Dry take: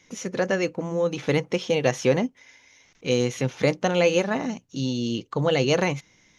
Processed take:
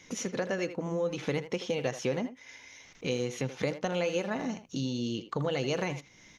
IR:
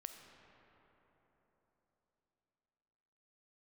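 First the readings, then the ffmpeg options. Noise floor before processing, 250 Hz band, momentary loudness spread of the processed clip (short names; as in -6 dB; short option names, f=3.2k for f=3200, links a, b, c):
-61 dBFS, -7.5 dB, 8 LU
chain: -filter_complex "[0:a]acompressor=threshold=-38dB:ratio=2.5,asplit=2[a][b];[b]adelay=80,highpass=300,lowpass=3.4k,asoftclip=type=hard:threshold=-30.5dB,volume=-10dB[c];[a][c]amix=inputs=2:normalize=0,volume=3.5dB"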